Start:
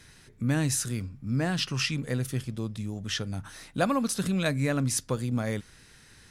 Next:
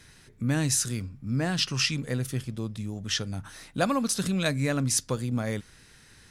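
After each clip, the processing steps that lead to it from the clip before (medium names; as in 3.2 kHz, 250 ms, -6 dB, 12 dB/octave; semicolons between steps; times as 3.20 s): dynamic bell 5.7 kHz, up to +5 dB, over -42 dBFS, Q 0.75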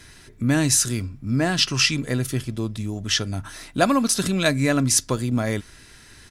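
comb 3 ms, depth 33%; trim +6.5 dB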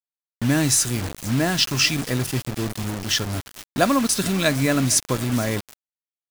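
shuffle delay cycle 762 ms, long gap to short 1.5:1, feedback 33%, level -20.5 dB; bit crusher 5-bit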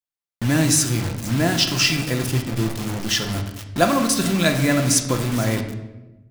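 reverberation RT60 1.1 s, pre-delay 6 ms, DRR 4 dB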